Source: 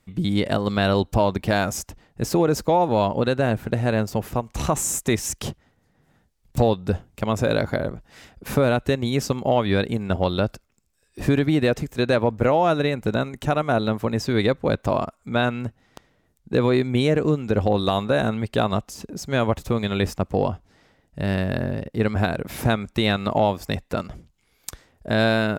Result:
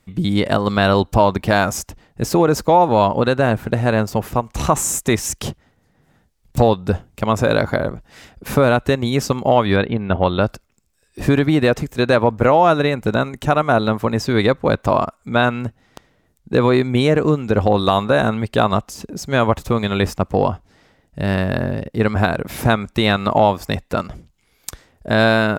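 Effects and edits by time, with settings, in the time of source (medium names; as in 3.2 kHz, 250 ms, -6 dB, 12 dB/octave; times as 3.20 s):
9.76–10.41 s: inverse Chebyshev low-pass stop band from 7 kHz
whole clip: dynamic bell 1.1 kHz, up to +5 dB, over -35 dBFS, Q 1.3; trim +4 dB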